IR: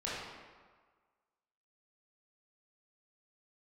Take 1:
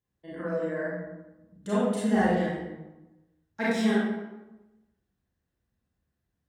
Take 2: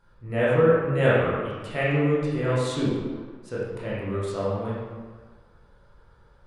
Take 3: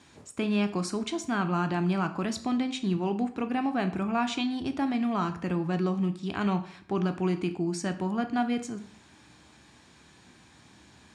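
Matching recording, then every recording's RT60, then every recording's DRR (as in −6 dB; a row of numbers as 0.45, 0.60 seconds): 2; 1.0, 1.5, 0.55 seconds; −9.0, −8.5, 8.5 decibels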